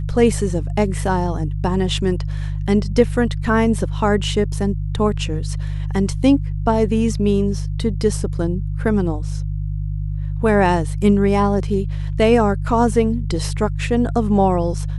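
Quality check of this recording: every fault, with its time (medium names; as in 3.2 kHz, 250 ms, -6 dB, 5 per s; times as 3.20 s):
hum 50 Hz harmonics 3 -23 dBFS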